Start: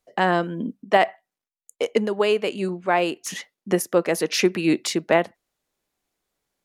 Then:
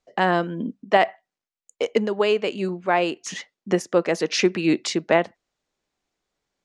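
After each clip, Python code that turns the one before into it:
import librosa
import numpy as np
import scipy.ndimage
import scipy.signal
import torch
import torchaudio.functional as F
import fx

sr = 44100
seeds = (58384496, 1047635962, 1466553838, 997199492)

y = scipy.signal.sosfilt(scipy.signal.butter(4, 7400.0, 'lowpass', fs=sr, output='sos'), x)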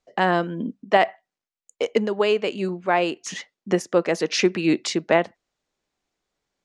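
y = x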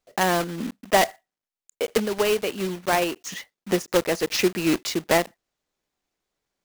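y = fx.block_float(x, sr, bits=3)
y = y * librosa.db_to_amplitude(-2.0)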